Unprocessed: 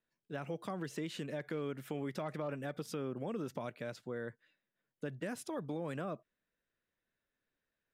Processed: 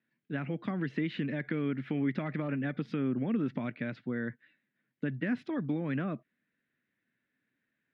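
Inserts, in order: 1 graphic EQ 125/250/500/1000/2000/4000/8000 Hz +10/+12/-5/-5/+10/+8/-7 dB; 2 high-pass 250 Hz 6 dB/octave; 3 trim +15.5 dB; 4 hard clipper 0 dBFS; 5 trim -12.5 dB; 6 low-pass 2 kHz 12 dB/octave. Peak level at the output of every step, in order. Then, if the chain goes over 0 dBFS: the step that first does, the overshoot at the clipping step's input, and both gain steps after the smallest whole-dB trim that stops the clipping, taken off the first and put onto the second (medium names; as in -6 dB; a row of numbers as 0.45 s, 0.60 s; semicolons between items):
-18.5 dBFS, -21.0 dBFS, -5.5 dBFS, -5.5 dBFS, -18.0 dBFS, -19.0 dBFS; nothing clips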